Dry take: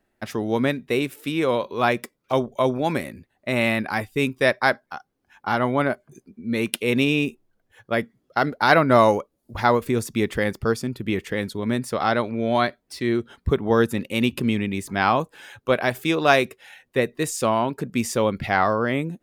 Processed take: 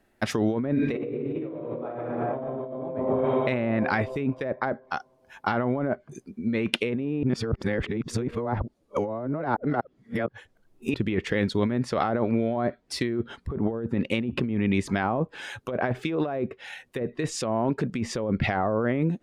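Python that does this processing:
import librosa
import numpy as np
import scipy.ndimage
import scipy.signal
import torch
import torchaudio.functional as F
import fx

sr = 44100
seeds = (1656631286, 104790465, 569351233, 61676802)

y = fx.reverb_throw(x, sr, start_s=0.73, length_s=1.94, rt60_s=2.6, drr_db=-8.5)
y = fx.edit(y, sr, fx.reverse_span(start_s=7.23, length_s=3.71), tone=tone)
y = fx.env_lowpass_down(y, sr, base_hz=830.0, full_db=-16.0)
y = fx.dynamic_eq(y, sr, hz=1000.0, q=1.5, threshold_db=-34.0, ratio=4.0, max_db=-4)
y = fx.over_compress(y, sr, threshold_db=-27.0, ratio=-1.0)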